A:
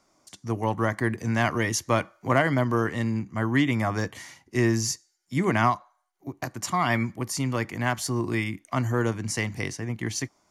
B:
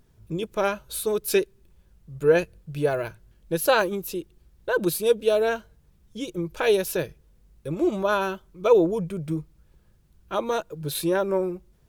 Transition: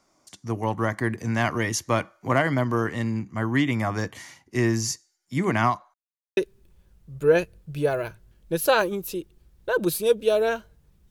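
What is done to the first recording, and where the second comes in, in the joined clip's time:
A
5.94–6.37 mute
6.37 switch to B from 1.37 s

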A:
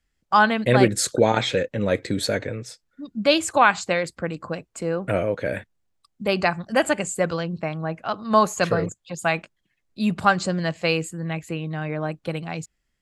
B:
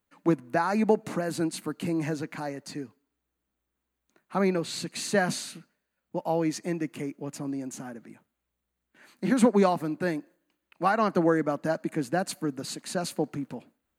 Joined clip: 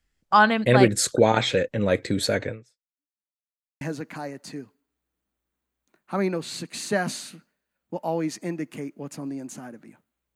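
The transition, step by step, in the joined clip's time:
A
2.49–3.31 fade out exponential
3.31–3.81 mute
3.81 switch to B from 2.03 s

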